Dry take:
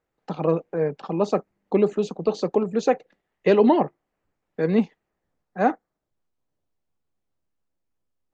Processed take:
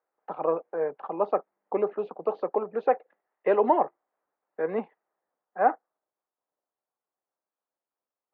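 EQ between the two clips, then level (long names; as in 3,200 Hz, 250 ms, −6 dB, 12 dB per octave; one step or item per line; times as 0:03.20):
high-pass filter 710 Hz 12 dB per octave
low-pass filter 1,300 Hz 12 dB per octave
high-frequency loss of the air 320 metres
+4.5 dB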